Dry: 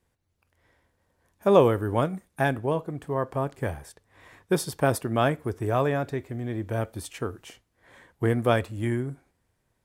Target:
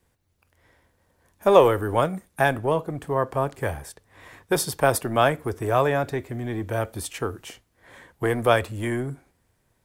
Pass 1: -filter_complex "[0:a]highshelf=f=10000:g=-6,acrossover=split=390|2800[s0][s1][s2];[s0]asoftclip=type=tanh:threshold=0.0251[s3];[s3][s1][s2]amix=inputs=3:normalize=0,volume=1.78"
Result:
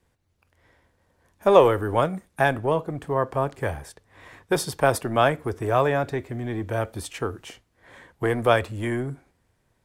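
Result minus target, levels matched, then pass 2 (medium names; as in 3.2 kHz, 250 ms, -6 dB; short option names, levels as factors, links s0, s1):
8 kHz band -4.0 dB
-filter_complex "[0:a]highshelf=f=10000:g=4,acrossover=split=390|2800[s0][s1][s2];[s0]asoftclip=type=tanh:threshold=0.0251[s3];[s3][s1][s2]amix=inputs=3:normalize=0,volume=1.78"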